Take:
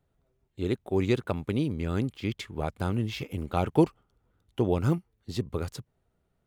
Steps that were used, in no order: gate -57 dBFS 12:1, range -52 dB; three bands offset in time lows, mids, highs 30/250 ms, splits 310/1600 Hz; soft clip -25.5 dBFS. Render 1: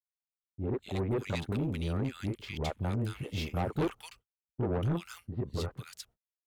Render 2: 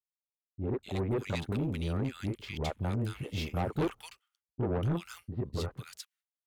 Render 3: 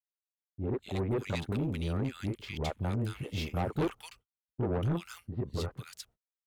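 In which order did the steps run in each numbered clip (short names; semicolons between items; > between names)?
three bands offset in time > soft clip > gate; gate > three bands offset in time > soft clip; three bands offset in time > gate > soft clip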